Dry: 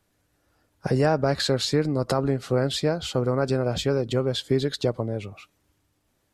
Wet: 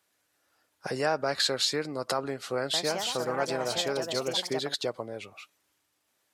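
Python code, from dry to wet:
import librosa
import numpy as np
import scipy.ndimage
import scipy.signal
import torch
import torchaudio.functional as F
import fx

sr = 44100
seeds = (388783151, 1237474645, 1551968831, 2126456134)

y = fx.echo_pitch(x, sr, ms=165, semitones=4, count=2, db_per_echo=-6.0, at=(2.57, 5.1))
y = fx.highpass(y, sr, hz=1100.0, slope=6)
y = y * 10.0 ** (1.0 / 20.0)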